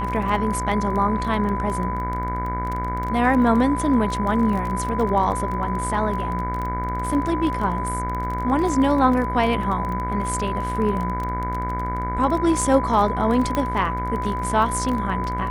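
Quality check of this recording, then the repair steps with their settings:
mains buzz 60 Hz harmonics 38 −28 dBFS
surface crackle 22 per second −26 dBFS
whistle 1,000 Hz −26 dBFS
0:13.55: click −10 dBFS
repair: click removal
hum removal 60 Hz, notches 38
notch filter 1,000 Hz, Q 30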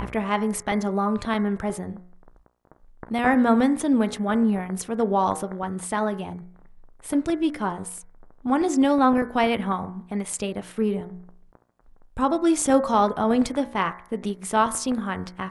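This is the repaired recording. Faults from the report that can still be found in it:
none of them is left

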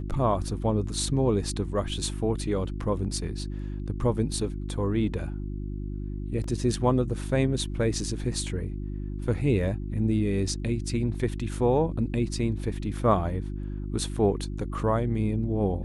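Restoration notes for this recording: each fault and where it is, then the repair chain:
mains hum 50 Hz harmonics 7 −33 dBFS
0:06.44: drop-out 2.8 ms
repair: hum removal 50 Hz, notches 7
repair the gap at 0:06.44, 2.8 ms

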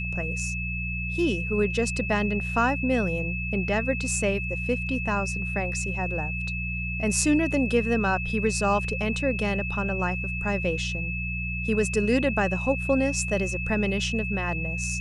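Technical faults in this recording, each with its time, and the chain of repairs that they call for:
mains hum 60 Hz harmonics 3 −32 dBFS
whistle 2,600 Hz −31 dBFS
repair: hum removal 60 Hz, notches 3
notch filter 2,600 Hz, Q 30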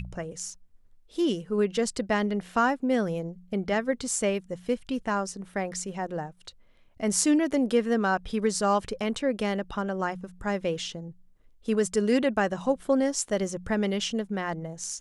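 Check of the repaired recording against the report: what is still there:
none of them is left

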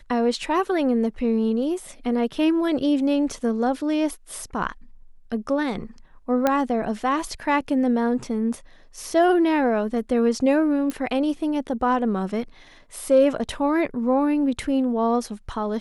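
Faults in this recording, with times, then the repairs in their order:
0:06.47: click −7 dBFS
0:10.90: click −15 dBFS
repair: click removal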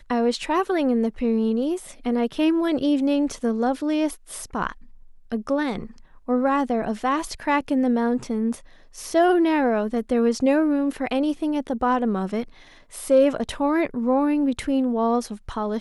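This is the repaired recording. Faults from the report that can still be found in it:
0:10.90: click

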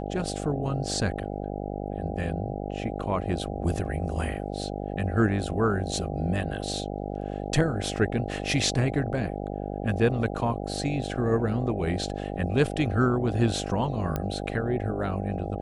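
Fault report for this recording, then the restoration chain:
mains buzz 50 Hz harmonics 16 −33 dBFS
0:14.16: click −15 dBFS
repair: click removal
hum removal 50 Hz, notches 16

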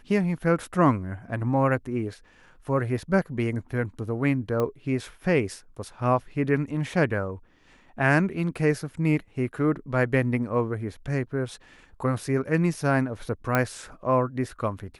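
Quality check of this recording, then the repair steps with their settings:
0:04.60: click −15 dBFS
0:13.55: click −9 dBFS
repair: click removal

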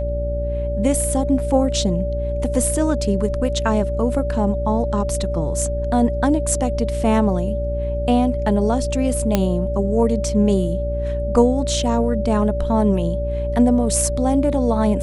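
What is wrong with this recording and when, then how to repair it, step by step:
mains hum 60 Hz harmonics 8 −24 dBFS
whistle 580 Hz −24 dBFS
0:09.35: click −3 dBFS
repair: click removal
hum removal 60 Hz, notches 8
notch filter 580 Hz, Q 30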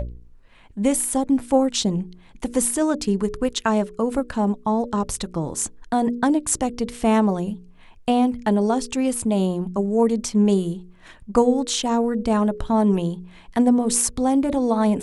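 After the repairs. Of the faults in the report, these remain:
none of them is left

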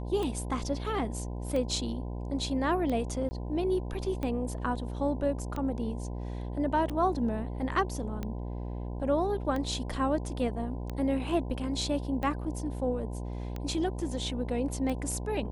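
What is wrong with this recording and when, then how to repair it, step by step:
mains buzz 60 Hz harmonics 17 −36 dBFS
scratch tick 45 rpm −22 dBFS
0:03.29–0:03.31: drop-out 20 ms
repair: click removal
hum removal 60 Hz, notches 17
repair the gap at 0:03.29, 20 ms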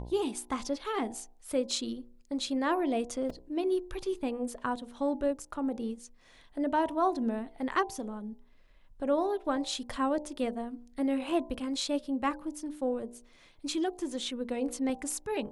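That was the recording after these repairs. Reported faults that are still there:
none of them is left

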